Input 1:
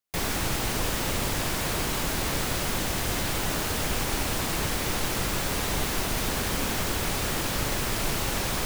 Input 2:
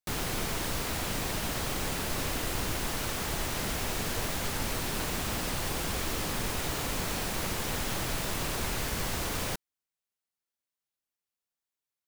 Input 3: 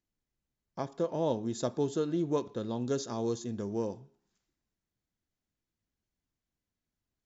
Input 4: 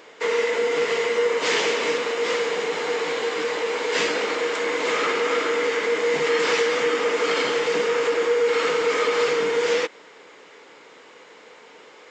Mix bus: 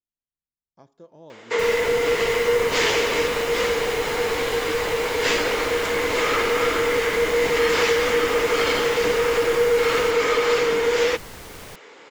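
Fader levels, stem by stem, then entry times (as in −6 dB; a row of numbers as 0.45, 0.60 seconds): −8.5, −8.0, −15.5, +1.5 decibels; 1.45, 2.20, 0.00, 1.30 seconds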